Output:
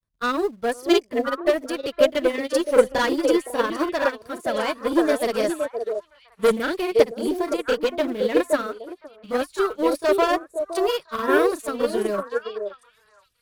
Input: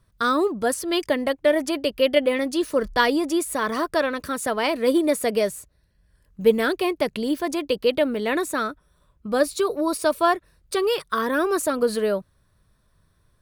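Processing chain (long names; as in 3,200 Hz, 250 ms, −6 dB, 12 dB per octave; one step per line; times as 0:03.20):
granular cloud 100 ms, grains 20 per second, spray 30 ms, pitch spread up and down by 0 semitones
in parallel at −10 dB: log-companded quantiser 4 bits
on the sum: tube saturation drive 17 dB, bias 0.2
on a send: echo through a band-pass that steps 516 ms, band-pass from 480 Hz, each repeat 1.4 octaves, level 0 dB
on the sum: expander for the loud parts 2.5 to 1, over −32 dBFS
level +7.5 dB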